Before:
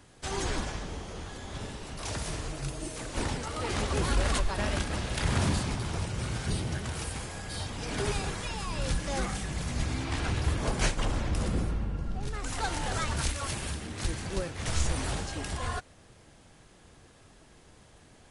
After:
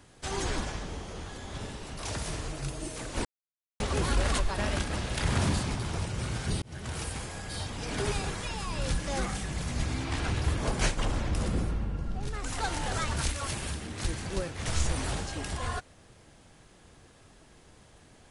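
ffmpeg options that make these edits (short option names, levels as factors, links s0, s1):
-filter_complex "[0:a]asplit=4[s0][s1][s2][s3];[s0]atrim=end=3.25,asetpts=PTS-STARTPTS,afade=t=out:st=3.246:d=0.004:c=hsin[s4];[s1]atrim=start=3.25:end=3.8,asetpts=PTS-STARTPTS,volume=0[s5];[s2]atrim=start=3.8:end=6.62,asetpts=PTS-STARTPTS,afade=t=in:d=0.004:c=hsin,afade=t=out:st=2.816:d=0.004:c=hsin[s6];[s3]atrim=start=6.62,asetpts=PTS-STARTPTS,afade=t=in:d=0.32[s7];[s4][s5][s6][s7]concat=n=4:v=0:a=1"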